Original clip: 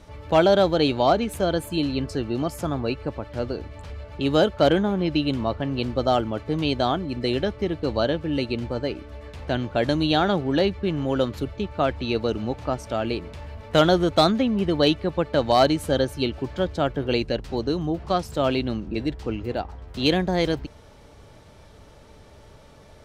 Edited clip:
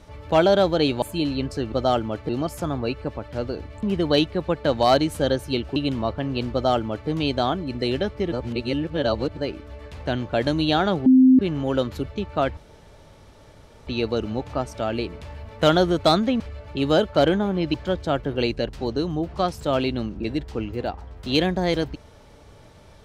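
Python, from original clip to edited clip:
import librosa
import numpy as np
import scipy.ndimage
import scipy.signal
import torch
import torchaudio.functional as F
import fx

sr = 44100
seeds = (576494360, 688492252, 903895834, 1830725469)

y = fx.edit(x, sr, fx.cut(start_s=1.02, length_s=0.58),
    fx.swap(start_s=3.84, length_s=1.34, other_s=14.52, other_length_s=1.93),
    fx.duplicate(start_s=5.94, length_s=0.57, to_s=2.3),
    fx.reverse_span(start_s=7.74, length_s=1.05),
    fx.bleep(start_s=10.48, length_s=0.33, hz=259.0, db=-9.5),
    fx.insert_room_tone(at_s=11.99, length_s=1.3), tone=tone)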